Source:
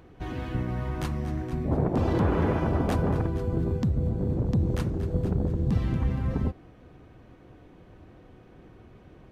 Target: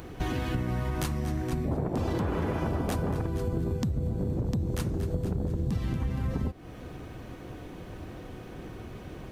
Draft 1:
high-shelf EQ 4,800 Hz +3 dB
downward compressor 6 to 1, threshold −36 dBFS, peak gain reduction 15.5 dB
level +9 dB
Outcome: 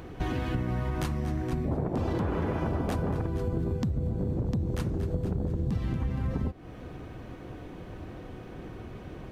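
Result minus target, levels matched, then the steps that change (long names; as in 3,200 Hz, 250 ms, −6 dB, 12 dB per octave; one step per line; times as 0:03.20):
8,000 Hz band −6.0 dB
change: high-shelf EQ 4,800 Hz +12 dB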